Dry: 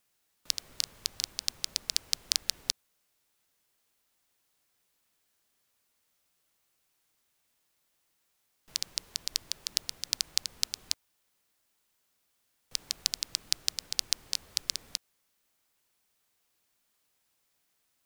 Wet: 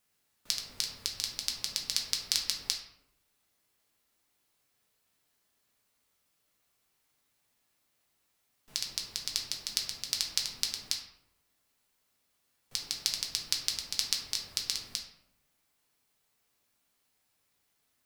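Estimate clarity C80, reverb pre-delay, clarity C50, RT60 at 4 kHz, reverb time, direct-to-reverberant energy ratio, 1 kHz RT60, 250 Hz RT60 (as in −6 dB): 8.0 dB, 3 ms, 5.5 dB, 0.45 s, 0.85 s, −0.5 dB, 0.75 s, 0.95 s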